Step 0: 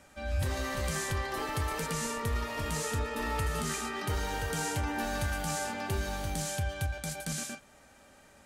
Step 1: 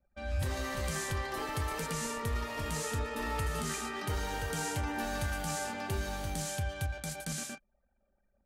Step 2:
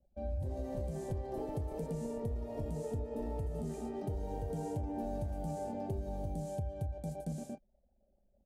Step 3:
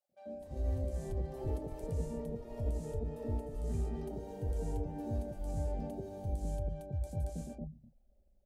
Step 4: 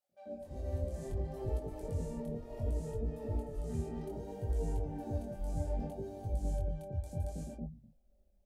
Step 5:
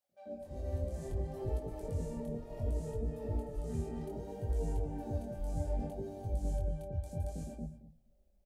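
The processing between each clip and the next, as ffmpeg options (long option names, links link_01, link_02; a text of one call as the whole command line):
ffmpeg -i in.wav -af "anlmdn=0.01,volume=-2dB" out.wav
ffmpeg -i in.wav -af "firequalizer=gain_entry='entry(690,0);entry(1200,-26);entry(8300,-19)':delay=0.05:min_phase=1,acompressor=threshold=-37dB:ratio=6,volume=3dB" out.wav
ffmpeg -i in.wav -filter_complex "[0:a]lowshelf=frequency=68:gain=9,acrossover=split=150|770[link_01][link_02][link_03];[link_02]adelay=90[link_04];[link_01]adelay=340[link_05];[link_05][link_04][link_03]amix=inputs=3:normalize=0,volume=-1dB" out.wav
ffmpeg -i in.wav -af "flanger=delay=17.5:depth=7.9:speed=0.65,volume=3dB" out.wav
ffmpeg -i in.wav -af "aecho=1:1:223:0.158" out.wav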